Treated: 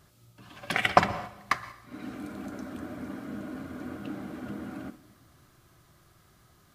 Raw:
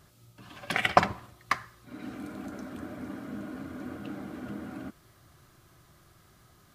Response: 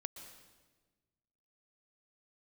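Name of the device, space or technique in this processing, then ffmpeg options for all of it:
keyed gated reverb: -filter_complex "[0:a]asplit=3[a][b][c];[1:a]atrim=start_sample=2205[d];[b][d]afir=irnorm=-1:irlink=0[e];[c]apad=whole_len=297289[f];[e][f]sidechaingate=range=-6dB:threshold=-46dB:ratio=16:detection=peak,volume=1dB[g];[a][g]amix=inputs=2:normalize=0,volume=-4dB"

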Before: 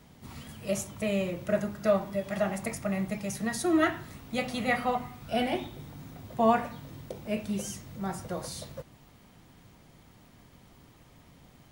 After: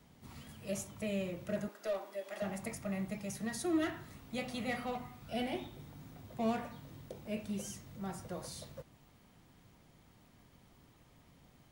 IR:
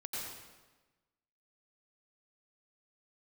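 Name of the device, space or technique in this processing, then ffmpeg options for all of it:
one-band saturation: -filter_complex "[0:a]asettb=1/sr,asplit=3[a][b][c];[a]atrim=end=1.684[d];[b]atrim=start=1.68:end=2.42,asetpts=PTS-STARTPTS,afade=t=in:d=0.004:c=qsin,afade=t=out:st=0.736:d=0.004:c=qsin,highpass=f=340:w=0.5412,highpass=f=340:w=1.3066[e];[c]atrim=start=2.416[f];[d][e]acrossfade=d=0.004:c1=hsin:c2=qsin[g];[g][f]acrossfade=d=0.004:c1=qsin:c2=hsin,acrossover=split=570|2200[h][i][j];[i]asoftclip=type=tanh:threshold=-36dB[k];[h][k][j]amix=inputs=3:normalize=0,volume=-7dB"

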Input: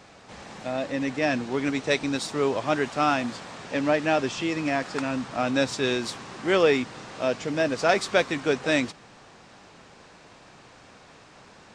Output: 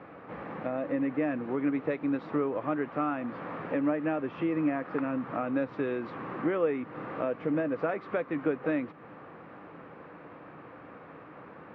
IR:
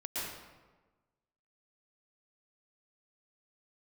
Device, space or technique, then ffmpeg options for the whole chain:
bass amplifier: -af "acompressor=threshold=-33dB:ratio=4,highpass=84,equalizer=f=160:t=q:w=4:g=5,equalizer=f=300:t=q:w=4:g=9,equalizer=f=500:t=q:w=4:g=7,equalizer=f=1.2k:t=q:w=4:g=6,lowpass=f=2.2k:w=0.5412,lowpass=f=2.2k:w=1.3066"

